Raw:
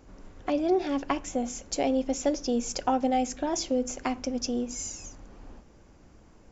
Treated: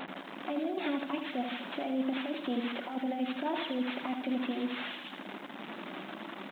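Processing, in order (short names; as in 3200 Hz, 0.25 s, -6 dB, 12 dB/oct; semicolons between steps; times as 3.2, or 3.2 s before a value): delta modulation 32 kbps, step -35.5 dBFS; notches 60/120/180/240/300/360/420/480 Hz; reverb removal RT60 0.62 s; bell 470 Hz -8.5 dB 0.37 oct; negative-ratio compressor -31 dBFS, ratio -0.5; limiter -26.5 dBFS, peak gain reduction 7 dB; on a send at -17 dB: reverb RT60 0.85 s, pre-delay 7 ms; on the sum: downsampling 8000 Hz; brick-wall FIR high-pass 170 Hz; lo-fi delay 80 ms, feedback 55%, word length 11-bit, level -6 dB; gain +1.5 dB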